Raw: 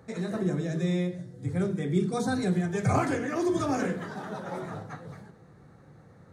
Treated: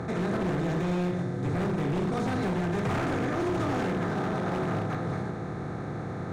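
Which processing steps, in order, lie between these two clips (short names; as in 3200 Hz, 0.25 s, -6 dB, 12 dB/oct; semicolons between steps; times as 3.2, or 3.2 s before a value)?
per-bin compression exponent 0.4; LPF 2500 Hz 6 dB/oct; notch 570 Hz, Q 19; in parallel at -1 dB: limiter -16.5 dBFS, peak gain reduction 6 dB; on the sum: wavefolder -14 dBFS; gain -8.5 dB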